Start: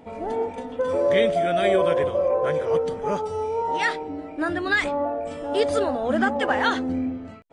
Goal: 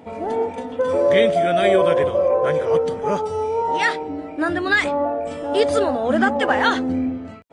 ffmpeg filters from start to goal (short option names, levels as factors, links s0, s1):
-af "highpass=59,volume=1.58"